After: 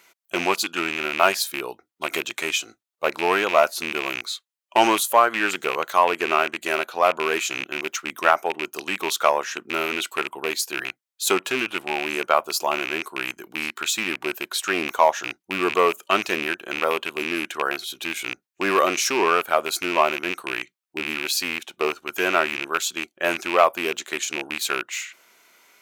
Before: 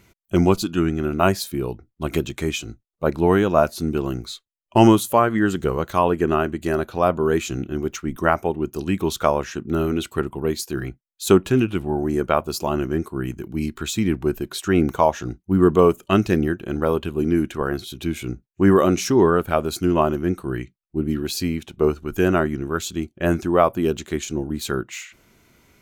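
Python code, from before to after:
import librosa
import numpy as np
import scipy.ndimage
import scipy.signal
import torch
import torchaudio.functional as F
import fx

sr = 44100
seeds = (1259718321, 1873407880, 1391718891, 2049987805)

p1 = fx.rattle_buzz(x, sr, strikes_db=-24.0, level_db=-17.0)
p2 = np.clip(10.0 ** (12.0 / 20.0) * p1, -1.0, 1.0) / 10.0 ** (12.0 / 20.0)
p3 = p1 + (p2 * 10.0 ** (-4.0 / 20.0))
y = scipy.signal.sosfilt(scipy.signal.butter(2, 700.0, 'highpass', fs=sr, output='sos'), p3)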